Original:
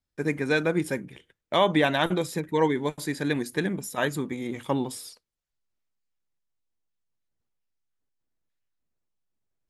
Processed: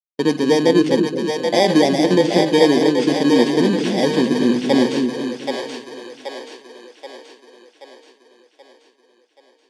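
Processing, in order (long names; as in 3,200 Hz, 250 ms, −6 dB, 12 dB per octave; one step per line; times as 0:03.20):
samples in bit-reversed order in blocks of 32 samples
noise gate −38 dBFS, range −43 dB
in parallel at +3 dB: brickwall limiter −19 dBFS, peak gain reduction 10 dB
on the sum: loudspeaker in its box 180–6,500 Hz, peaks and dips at 230 Hz +9 dB, 340 Hz +6 dB, 510 Hz +8 dB, 770 Hz +5 dB, 1,200 Hz −9 dB, 3,600 Hz +6 dB
echo with a time of its own for lows and highs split 440 Hz, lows 235 ms, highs 779 ms, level −4 dB
level +1 dB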